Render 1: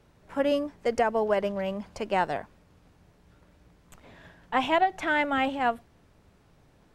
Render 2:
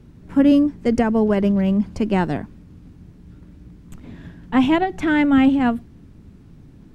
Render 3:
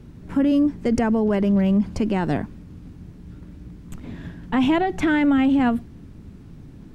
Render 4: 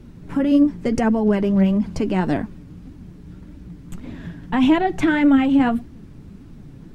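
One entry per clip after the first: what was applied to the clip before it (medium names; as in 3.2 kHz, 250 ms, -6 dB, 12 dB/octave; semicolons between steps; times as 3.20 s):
resonant low shelf 400 Hz +12.5 dB, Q 1.5; trim +3 dB
peak limiter -15.5 dBFS, peak gain reduction 9.5 dB; trim +3 dB
flange 1.7 Hz, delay 2.9 ms, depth 4.7 ms, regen +48%; trim +5.5 dB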